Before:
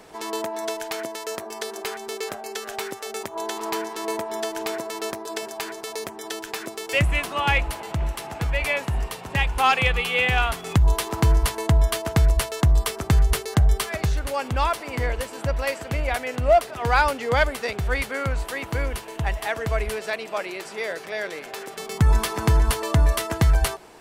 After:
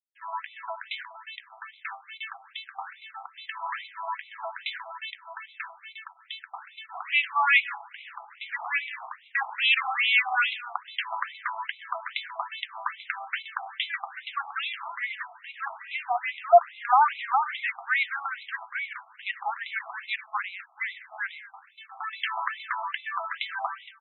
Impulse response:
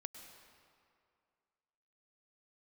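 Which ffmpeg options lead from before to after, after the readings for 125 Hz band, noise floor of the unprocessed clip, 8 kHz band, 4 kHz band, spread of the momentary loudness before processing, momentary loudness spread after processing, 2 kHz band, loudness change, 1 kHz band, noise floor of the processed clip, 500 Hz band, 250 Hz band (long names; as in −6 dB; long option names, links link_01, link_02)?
below −40 dB, −39 dBFS, below −40 dB, −2.5 dB, 11 LU, 19 LU, −0.5 dB, −4.0 dB, −1.0 dB, −56 dBFS, −7.5 dB, below −40 dB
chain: -filter_complex "[0:a]agate=range=-33dB:threshold=-27dB:ratio=3:detection=peak,highshelf=frequency=6100:gain=7.5,aeval=exprs='sgn(val(0))*max(abs(val(0))-0.00355,0)':channel_layout=same,aecho=1:1:230:0.1,asplit=2[link_01][link_02];[1:a]atrim=start_sample=2205,afade=type=out:start_time=0.3:duration=0.01,atrim=end_sample=13671[link_03];[link_02][link_03]afir=irnorm=-1:irlink=0,volume=-1.5dB[link_04];[link_01][link_04]amix=inputs=2:normalize=0,afftfilt=real='re*between(b*sr/1024,930*pow(2900/930,0.5+0.5*sin(2*PI*2.4*pts/sr))/1.41,930*pow(2900/930,0.5+0.5*sin(2*PI*2.4*pts/sr))*1.41)':imag='im*between(b*sr/1024,930*pow(2900/930,0.5+0.5*sin(2*PI*2.4*pts/sr))/1.41,930*pow(2900/930,0.5+0.5*sin(2*PI*2.4*pts/sr))*1.41)':win_size=1024:overlap=0.75"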